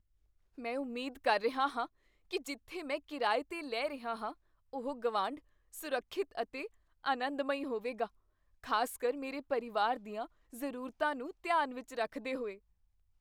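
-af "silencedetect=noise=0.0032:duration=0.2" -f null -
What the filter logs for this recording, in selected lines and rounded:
silence_start: 0.00
silence_end: 0.58 | silence_duration: 0.58
silence_start: 1.86
silence_end: 2.31 | silence_duration: 0.44
silence_start: 4.33
silence_end: 4.73 | silence_duration: 0.40
silence_start: 5.39
silence_end: 5.74 | silence_duration: 0.35
silence_start: 6.67
silence_end: 7.04 | silence_duration: 0.37
silence_start: 8.07
silence_end: 8.64 | silence_duration: 0.56
silence_start: 10.26
silence_end: 10.53 | silence_duration: 0.27
silence_start: 12.57
silence_end: 13.20 | silence_duration: 0.63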